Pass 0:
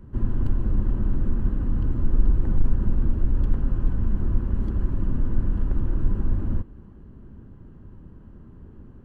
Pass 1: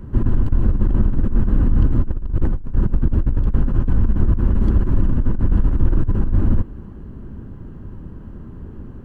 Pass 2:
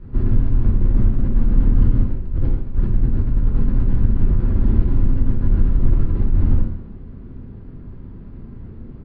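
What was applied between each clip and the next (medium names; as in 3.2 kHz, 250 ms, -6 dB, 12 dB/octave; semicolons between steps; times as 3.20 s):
compressor with a negative ratio -21 dBFS, ratio -0.5; trim +7.5 dB
median filter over 41 samples; reverberation RT60 0.80 s, pre-delay 4 ms, DRR -2 dB; resampled via 11.025 kHz; trim -6 dB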